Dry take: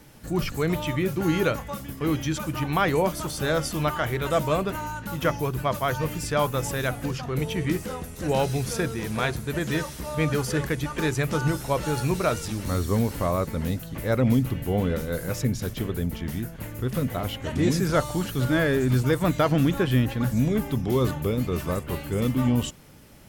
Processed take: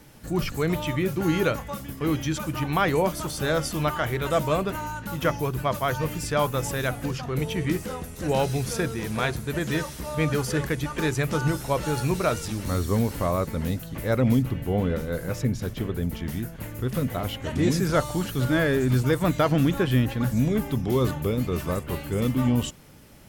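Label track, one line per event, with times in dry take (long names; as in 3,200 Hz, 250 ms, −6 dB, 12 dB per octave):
14.420000	16.030000	high-shelf EQ 3,700 Hz −6 dB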